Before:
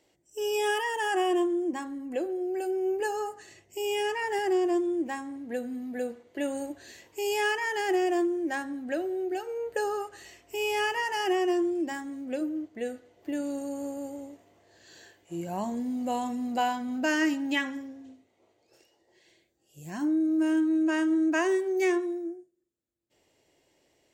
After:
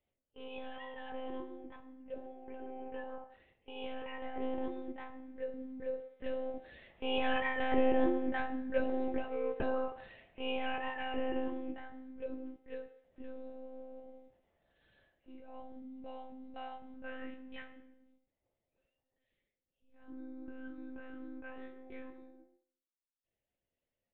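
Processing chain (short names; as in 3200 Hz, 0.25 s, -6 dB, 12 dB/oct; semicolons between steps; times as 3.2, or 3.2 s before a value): Doppler pass-by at 8.37, 8 m/s, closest 11 m; monotone LPC vocoder at 8 kHz 260 Hz; on a send: resonant low shelf 360 Hz -10.5 dB, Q 1.5 + reverb RT60 0.60 s, pre-delay 3 ms, DRR 3.5 dB; on the sum: gain -2.5 dB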